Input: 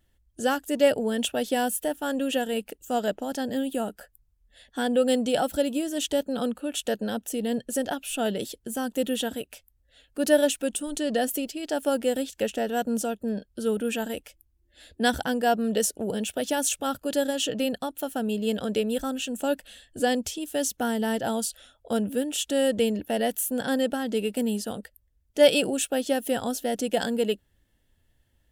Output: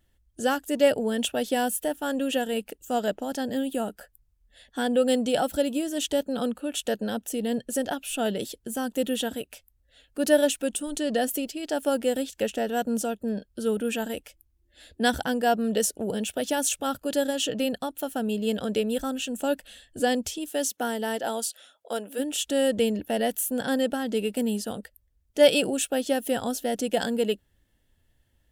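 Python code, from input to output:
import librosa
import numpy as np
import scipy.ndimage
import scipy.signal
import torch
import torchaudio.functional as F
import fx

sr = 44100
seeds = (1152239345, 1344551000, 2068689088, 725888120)

y = fx.highpass(x, sr, hz=fx.line((20.49, 230.0), (22.18, 520.0)), slope=12, at=(20.49, 22.18), fade=0.02)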